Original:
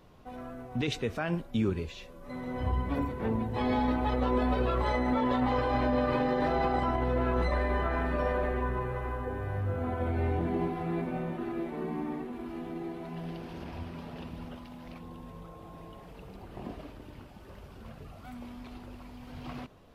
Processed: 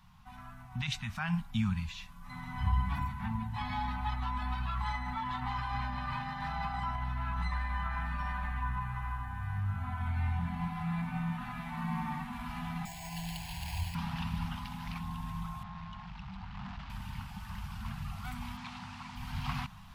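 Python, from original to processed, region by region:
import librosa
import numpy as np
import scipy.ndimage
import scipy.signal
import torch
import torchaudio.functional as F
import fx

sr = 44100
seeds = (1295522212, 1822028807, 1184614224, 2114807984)

y = fx.chain(x, sr, fx.high_shelf(hz=2100.0, db=8.5),
    fx.fixed_phaser(hz=530.0, stages=4),
    fx.resample_bad(factor=6, down='filtered', up='hold'), at=(12.85, 13.95))
y = fx.chain(y, sr, fx.lowpass(hz=5100.0, slope=24),
    fx.tube_stage(drive_db=44.0, bias=0.6), at=(15.63, 16.9))
y = fx.dmg_noise_colour(y, sr, seeds[0], colour='pink', level_db=-60.0, at=(18.56, 19.15), fade=0.02)
y = fx.bandpass_edges(y, sr, low_hz=140.0, high_hz=5400.0, at=(18.56, 19.15), fade=0.02)
y = scipy.signal.sosfilt(scipy.signal.ellip(3, 1.0, 60, [200.0, 860.0], 'bandstop', fs=sr, output='sos'), y)
y = fx.rider(y, sr, range_db=10, speed_s=2.0)
y = y * 10.0 ** (-1.0 / 20.0)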